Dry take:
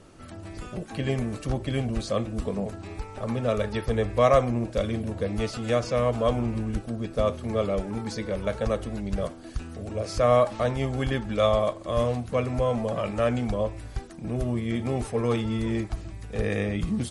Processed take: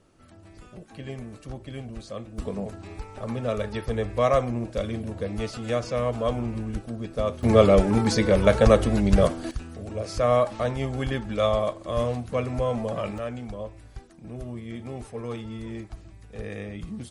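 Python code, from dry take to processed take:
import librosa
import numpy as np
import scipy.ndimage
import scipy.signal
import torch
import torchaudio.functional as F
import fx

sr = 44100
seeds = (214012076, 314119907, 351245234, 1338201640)

y = fx.gain(x, sr, db=fx.steps((0.0, -9.5), (2.38, -2.0), (7.43, 10.0), (9.51, -1.0), (13.18, -8.5)))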